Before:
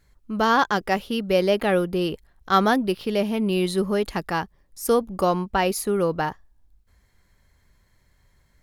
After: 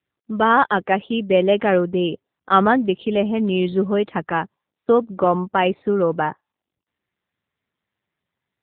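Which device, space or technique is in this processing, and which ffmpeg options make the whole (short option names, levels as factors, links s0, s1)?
mobile call with aggressive noise cancelling: -af "highpass=140,afftdn=nr=24:nf=-43,volume=1.68" -ar 8000 -c:a libopencore_amrnb -b:a 7950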